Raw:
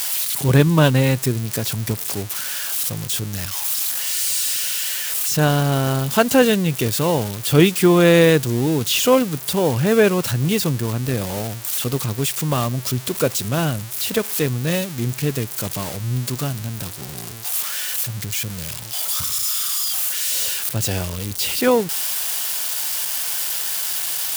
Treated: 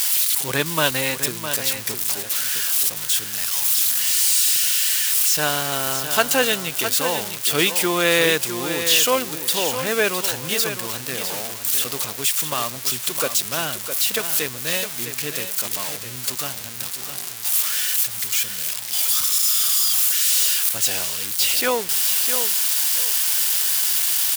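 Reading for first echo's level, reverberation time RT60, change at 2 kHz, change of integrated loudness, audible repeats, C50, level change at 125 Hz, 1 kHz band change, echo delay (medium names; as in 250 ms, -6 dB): -9.0 dB, no reverb, +2.0 dB, +1.0 dB, 2, no reverb, -16.5 dB, -1.5 dB, 659 ms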